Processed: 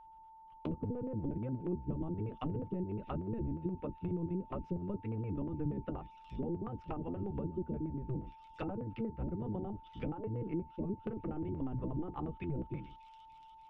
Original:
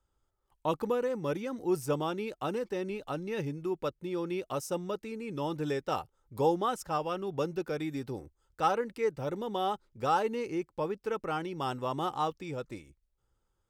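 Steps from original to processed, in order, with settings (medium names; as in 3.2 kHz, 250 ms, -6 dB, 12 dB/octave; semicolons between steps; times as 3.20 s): octave divider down 1 oct, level +4 dB; LFO low-pass square 8.4 Hz 310–2800 Hz; feedback echo behind a high-pass 292 ms, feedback 75%, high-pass 5 kHz, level -11.5 dB; compression 4:1, threshold -31 dBFS, peak gain reduction 10.5 dB; low-pass that closes with the level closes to 490 Hz, closed at -30 dBFS; flange 0.64 Hz, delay 5.1 ms, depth 1.8 ms, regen -58%; whistle 890 Hz -54 dBFS; peaking EQ 540 Hz -4 dB 2.7 oct; trim +3.5 dB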